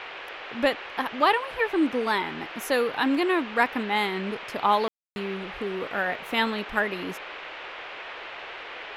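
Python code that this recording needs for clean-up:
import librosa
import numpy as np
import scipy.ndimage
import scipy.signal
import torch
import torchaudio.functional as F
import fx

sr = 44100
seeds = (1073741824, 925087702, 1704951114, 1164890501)

y = fx.fix_ambience(x, sr, seeds[0], print_start_s=8.2, print_end_s=8.7, start_s=4.88, end_s=5.16)
y = fx.noise_reduce(y, sr, print_start_s=8.2, print_end_s=8.7, reduce_db=30.0)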